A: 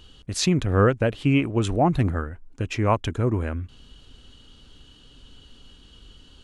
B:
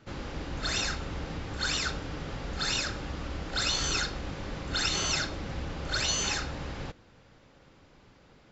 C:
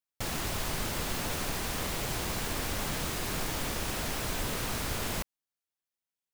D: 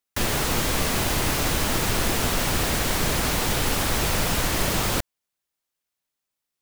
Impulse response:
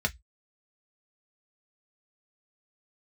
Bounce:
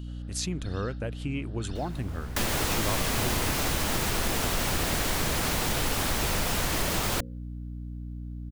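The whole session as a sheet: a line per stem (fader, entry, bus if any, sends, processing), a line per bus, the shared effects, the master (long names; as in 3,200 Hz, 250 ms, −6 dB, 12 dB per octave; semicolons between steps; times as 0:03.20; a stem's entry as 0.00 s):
−8.5 dB, 0.00 s, bus B, no send, no processing
−17.5 dB, 0.00 s, bus A, no send, phaser with its sweep stopped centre 1,500 Hz, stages 8
−8.0 dB, 1.55 s, bus B, no send, low-pass filter 1,100 Hz 6 dB per octave
+1.0 dB, 2.20 s, bus A, no send, mains-hum notches 60/120/180/240/300/360/420/480/540 Hz
bus A: 0.0 dB, mains hum 60 Hz, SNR 12 dB; downward compressor 2.5 to 1, threshold −26 dBFS, peak gain reduction 6 dB
bus B: 0.0 dB, high-shelf EQ 6,000 Hz +11 dB; downward compressor 2.5 to 1, threshold −31 dBFS, peak gain reduction 7 dB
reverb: not used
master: no processing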